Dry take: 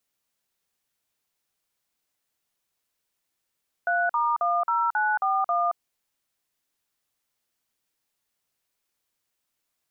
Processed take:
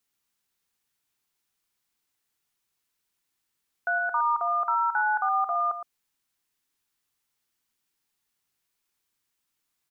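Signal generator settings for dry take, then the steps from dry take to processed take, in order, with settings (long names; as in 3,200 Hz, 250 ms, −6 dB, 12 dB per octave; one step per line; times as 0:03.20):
touch tones "3*10941", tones 224 ms, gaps 46 ms, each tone −23.5 dBFS
parametric band 590 Hz −9 dB 0.45 octaves
on a send: single-tap delay 114 ms −10.5 dB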